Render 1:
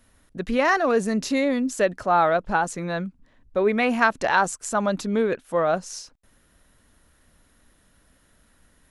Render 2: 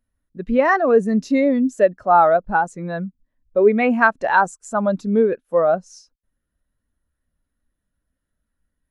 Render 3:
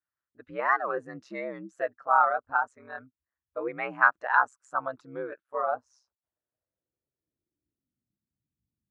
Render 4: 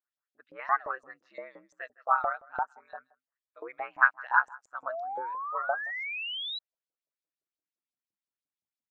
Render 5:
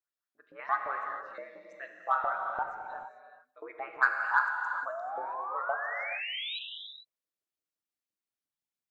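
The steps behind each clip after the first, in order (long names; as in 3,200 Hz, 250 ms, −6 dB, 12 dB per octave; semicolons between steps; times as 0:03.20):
every bin expanded away from the loudest bin 1.5 to 1; level +4 dB
high-shelf EQ 4,200 Hz +6 dB; ring modulation 66 Hz; band-pass filter sweep 1,300 Hz → 200 Hz, 0:05.52–0:08.21
single-tap delay 160 ms −23.5 dB; auto-filter band-pass saw up 5.8 Hz 580–6,000 Hz; sound drawn into the spectrogram rise, 0:04.88–0:06.59, 610–4,000 Hz −38 dBFS; level +2.5 dB
in parallel at −11.5 dB: soft clipping −17.5 dBFS, distortion −11 dB; on the sum: reverb whose tail is shaped and stops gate 470 ms flat, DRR 2.5 dB; level −5 dB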